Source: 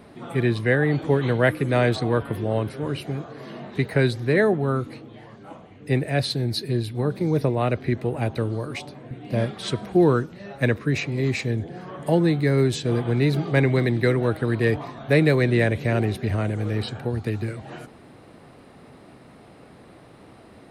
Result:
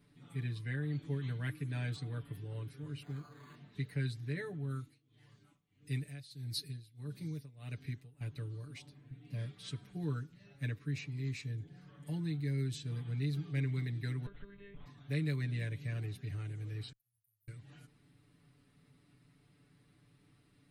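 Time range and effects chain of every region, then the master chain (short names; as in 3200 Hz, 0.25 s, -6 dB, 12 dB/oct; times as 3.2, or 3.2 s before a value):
3.02–3.55 bell 1100 Hz +13 dB 1.7 oct + decimation joined by straight lines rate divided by 8×
4.7–8.21 high shelf 3700 Hz +9.5 dB + tremolo 1.6 Hz, depth 88%
14.26–14.86 compressor 10:1, threshold -24 dBFS + monotone LPC vocoder at 8 kHz 200 Hz
16.92–17.48 inverse Chebyshev band-stop 470–3300 Hz, stop band 80 dB + differentiator
whole clip: passive tone stack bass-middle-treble 6-0-2; comb 6.9 ms, depth 97%; gain -3 dB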